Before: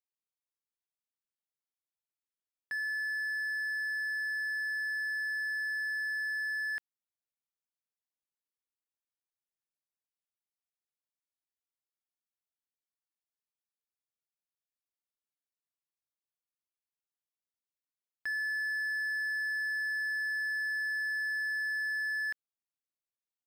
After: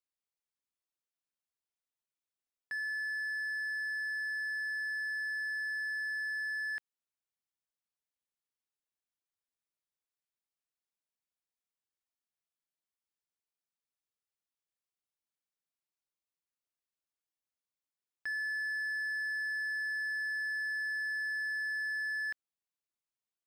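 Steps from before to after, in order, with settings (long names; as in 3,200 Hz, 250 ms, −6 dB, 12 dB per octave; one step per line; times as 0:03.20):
parametric band 14,000 Hz −14.5 dB 0.24 octaves
level −2 dB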